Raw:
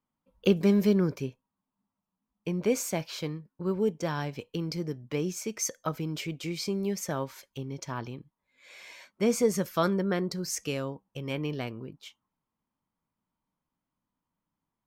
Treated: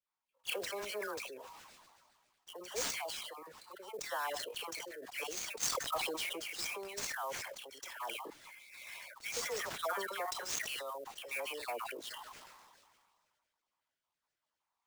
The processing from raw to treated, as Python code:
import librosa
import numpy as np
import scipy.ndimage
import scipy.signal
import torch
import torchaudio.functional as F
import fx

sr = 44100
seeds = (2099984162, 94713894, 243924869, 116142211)

y = fx.spec_dropout(x, sr, seeds[0], share_pct=35)
y = scipy.signal.sosfilt(scipy.signal.butter(4, 660.0, 'highpass', fs=sr, output='sos'), y)
y = fx.rider(y, sr, range_db=4, speed_s=0.5)
y = fx.dispersion(y, sr, late='lows', ms=90.0, hz=1600.0)
y = fx.sample_hold(y, sr, seeds[1], rate_hz=13000.0, jitter_pct=20)
y = fx.sustainer(y, sr, db_per_s=30.0)
y = y * 10.0 ** (-1.5 / 20.0)